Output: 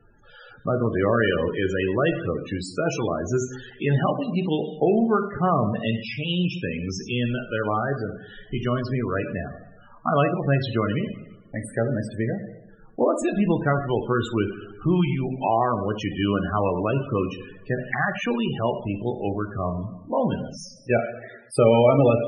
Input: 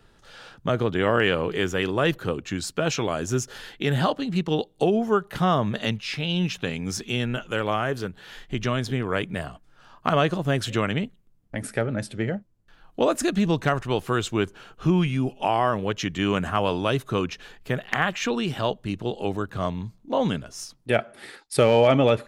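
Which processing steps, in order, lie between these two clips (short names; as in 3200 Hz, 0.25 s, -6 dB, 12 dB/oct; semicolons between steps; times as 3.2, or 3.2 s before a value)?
two-slope reverb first 0.84 s, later 2.3 s, DRR 4.5 dB; loudest bins only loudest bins 32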